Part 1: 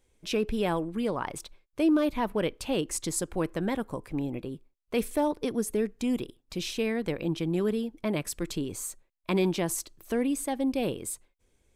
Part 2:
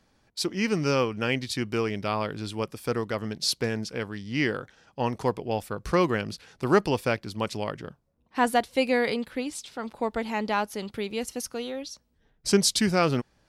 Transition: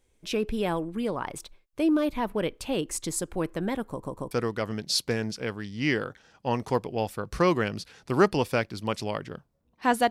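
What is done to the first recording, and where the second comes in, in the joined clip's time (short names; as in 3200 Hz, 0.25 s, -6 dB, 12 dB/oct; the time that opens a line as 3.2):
part 1
3.89 stutter in place 0.14 s, 3 plays
4.31 switch to part 2 from 2.84 s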